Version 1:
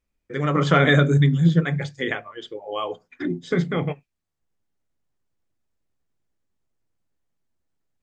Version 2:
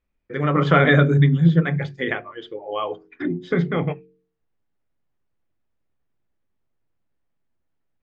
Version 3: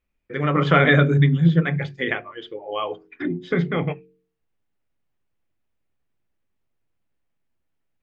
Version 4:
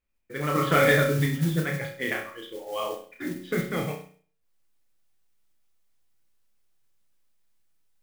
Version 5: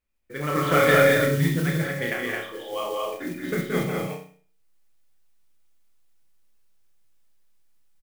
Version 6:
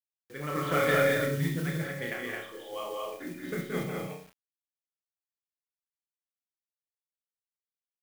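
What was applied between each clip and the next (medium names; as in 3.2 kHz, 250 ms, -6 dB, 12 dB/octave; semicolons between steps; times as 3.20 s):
low-pass 3 kHz 12 dB/octave; de-hum 45.38 Hz, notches 10; trim +2 dB
peaking EQ 2.6 kHz +4.5 dB 0.85 oct; trim -1 dB
feedback comb 110 Hz, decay 0.43 s, harmonics all, mix 60%; flutter echo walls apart 5.6 m, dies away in 0.44 s; modulation noise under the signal 17 dB
loudspeakers at several distances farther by 60 m -5 dB, 75 m -2 dB
bit crusher 8-bit; trim -7.5 dB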